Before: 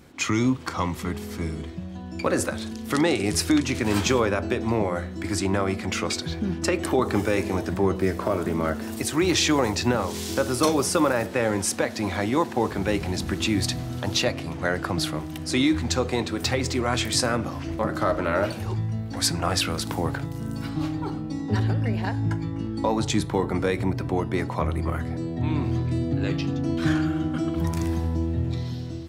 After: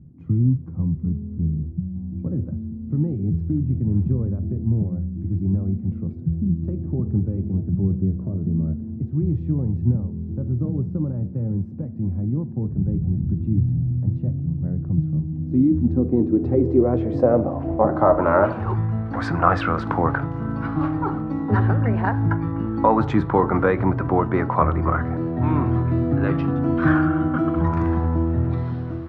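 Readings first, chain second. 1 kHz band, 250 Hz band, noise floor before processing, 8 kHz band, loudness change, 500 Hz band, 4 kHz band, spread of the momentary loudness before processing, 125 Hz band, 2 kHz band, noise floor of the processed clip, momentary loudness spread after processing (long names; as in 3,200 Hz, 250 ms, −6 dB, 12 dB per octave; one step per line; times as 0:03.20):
+4.0 dB, +3.5 dB, −35 dBFS, below −30 dB, +3.0 dB, +1.5 dB, below −20 dB, 7 LU, +7.0 dB, −2.5 dB, −32 dBFS, 8 LU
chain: surface crackle 250 per second −39 dBFS
low-pass filter sweep 150 Hz → 1,300 Hz, 0:15.07–0:18.73
level +4.5 dB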